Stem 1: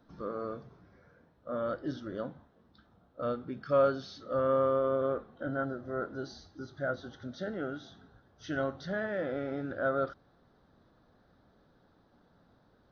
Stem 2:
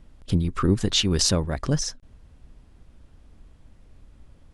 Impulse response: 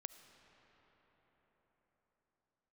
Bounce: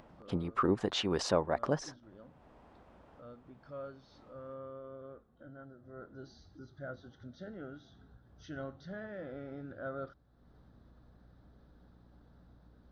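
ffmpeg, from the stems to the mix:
-filter_complex "[0:a]lowshelf=f=180:g=9.5,aeval=exprs='val(0)+0.00126*(sin(2*PI*60*n/s)+sin(2*PI*2*60*n/s)/2+sin(2*PI*3*60*n/s)/3+sin(2*PI*4*60*n/s)/4+sin(2*PI*5*60*n/s)/5)':c=same,volume=0.266,afade=t=in:st=5.75:d=0.58:silence=0.375837[s0];[1:a]bandpass=f=790:t=q:w=1.3:csg=0,volume=1.33[s1];[s0][s1]amix=inputs=2:normalize=0,acompressor=mode=upward:threshold=0.00316:ratio=2.5"

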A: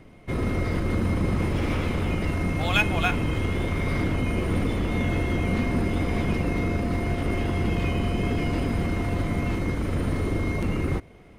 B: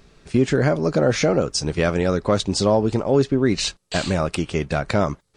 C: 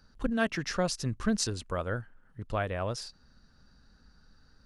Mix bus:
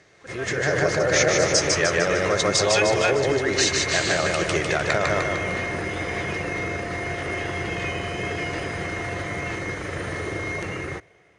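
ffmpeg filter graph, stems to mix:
-filter_complex "[0:a]volume=0.668[s0];[1:a]volume=0.596,asplit=2[s1][s2];[s2]volume=0.562[s3];[2:a]volume=0.316[s4];[s0][s1]amix=inputs=2:normalize=0,alimiter=limit=0.141:level=0:latency=1:release=45,volume=1[s5];[s3]aecho=0:1:151|302|453|604|755|906|1057|1208:1|0.55|0.303|0.166|0.0915|0.0503|0.0277|0.0152[s6];[s4][s5][s6]amix=inputs=3:normalize=0,equalizer=f=240:w=1.8:g=-9.5,dynaudnorm=f=110:g=11:m=2.11,highpass=150,equalizer=f=160:t=q:w=4:g=-4,equalizer=f=240:t=q:w=4:g=-9,equalizer=f=950:t=q:w=4:g=-3,equalizer=f=1800:t=q:w=4:g=9,equalizer=f=6300:t=q:w=4:g=7,lowpass=f=9300:w=0.5412,lowpass=f=9300:w=1.3066"

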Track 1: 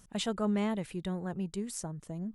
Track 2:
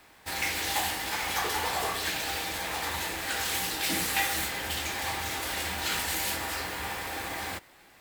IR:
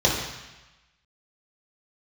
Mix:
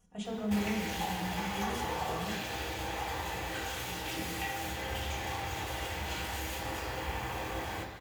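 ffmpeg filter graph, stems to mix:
-filter_complex "[0:a]aecho=1:1:4.2:0.9,volume=0.211,asplit=2[s0][s1];[s1]volume=0.251[s2];[1:a]acompressor=threshold=0.00794:ratio=3,adelay=250,volume=1,asplit=2[s3][s4];[s4]volume=0.266[s5];[2:a]atrim=start_sample=2205[s6];[s2][s5]amix=inputs=2:normalize=0[s7];[s7][s6]afir=irnorm=-1:irlink=0[s8];[s0][s3][s8]amix=inputs=3:normalize=0,equalizer=f=4900:t=o:w=2.4:g=-5"

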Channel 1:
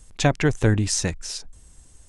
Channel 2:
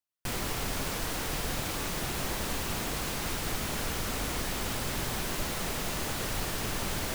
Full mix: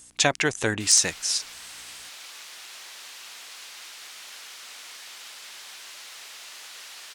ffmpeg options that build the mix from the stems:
-filter_complex "[0:a]highshelf=f=2200:g=7.5,aeval=exprs='0.668*(abs(mod(val(0)/0.668+3,4)-2)-1)':c=same,aeval=exprs='val(0)+0.00282*(sin(2*PI*60*n/s)+sin(2*PI*2*60*n/s)/2+sin(2*PI*3*60*n/s)/3+sin(2*PI*4*60*n/s)/4+sin(2*PI*5*60*n/s)/5)':c=same,volume=1.06[s0];[1:a]dynaudnorm=f=140:g=3:m=3.76,bandpass=f=4100:t=q:w=0.66:csg=0,adelay=550,volume=0.188[s1];[s0][s1]amix=inputs=2:normalize=0,highpass=f=610:p=1"

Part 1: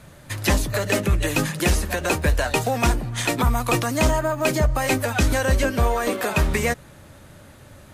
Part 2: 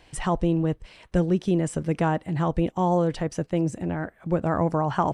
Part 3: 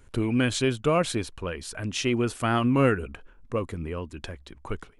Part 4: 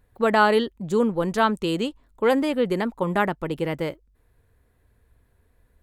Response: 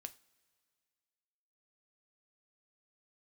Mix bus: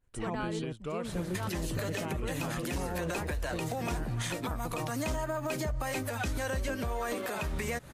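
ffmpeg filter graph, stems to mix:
-filter_complex "[0:a]alimiter=limit=0.126:level=0:latency=1:release=305,acompressor=threshold=0.0224:ratio=5,adelay=1050,volume=1.41[s0];[1:a]volume=0.266[s1];[2:a]agate=range=0.0224:threshold=0.00398:ratio=3:detection=peak,volume=0.188,asplit=2[s2][s3];[3:a]volume=0.126[s4];[s3]apad=whole_len=226626[s5];[s1][s5]sidechaingate=range=0.0224:threshold=0.00112:ratio=16:detection=peak[s6];[s0][s6][s2][s4]amix=inputs=4:normalize=0,alimiter=level_in=1.06:limit=0.0631:level=0:latency=1:release=134,volume=0.944"

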